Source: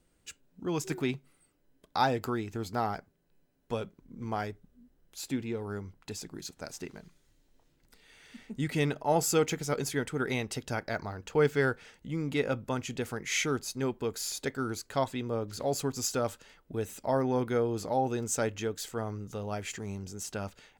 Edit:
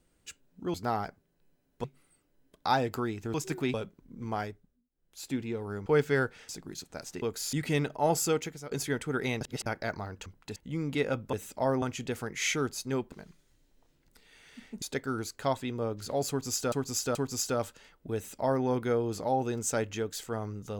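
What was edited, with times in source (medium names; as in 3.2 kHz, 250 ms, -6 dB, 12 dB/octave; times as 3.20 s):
0.74–1.14 s: swap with 2.64–3.74 s
4.40–5.35 s: dip -23.5 dB, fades 0.43 s
5.86–6.16 s: swap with 11.32–11.95 s
6.89–8.59 s: swap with 14.02–14.33 s
9.23–9.77 s: fade out, to -15.5 dB
10.47–10.72 s: reverse
15.80–16.23 s: loop, 3 plays
16.80–17.29 s: copy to 12.72 s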